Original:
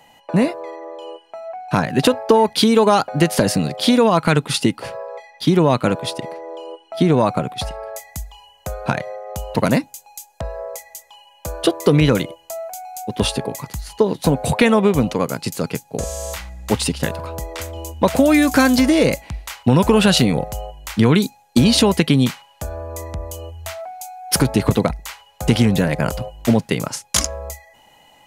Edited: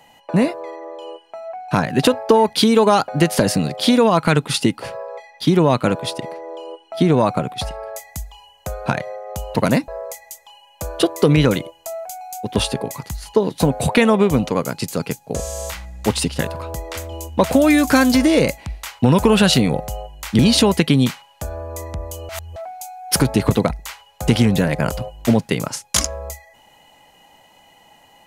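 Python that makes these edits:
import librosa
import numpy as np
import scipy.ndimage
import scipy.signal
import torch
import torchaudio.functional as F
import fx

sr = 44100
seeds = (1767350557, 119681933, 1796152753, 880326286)

y = fx.edit(x, sr, fx.cut(start_s=9.88, length_s=0.64),
    fx.cut(start_s=21.03, length_s=0.56),
    fx.reverse_span(start_s=23.49, length_s=0.27), tone=tone)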